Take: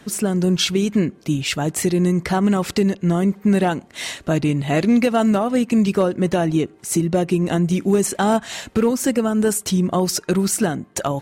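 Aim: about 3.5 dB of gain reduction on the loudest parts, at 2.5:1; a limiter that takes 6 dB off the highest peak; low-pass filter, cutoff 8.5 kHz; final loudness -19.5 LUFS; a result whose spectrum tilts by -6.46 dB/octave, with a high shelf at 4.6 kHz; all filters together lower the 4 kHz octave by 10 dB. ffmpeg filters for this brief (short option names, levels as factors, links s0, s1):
-af "lowpass=8500,equalizer=f=4000:t=o:g=-9,highshelf=f=4600:g=-9,acompressor=threshold=0.126:ratio=2.5,volume=1.78,alimiter=limit=0.299:level=0:latency=1"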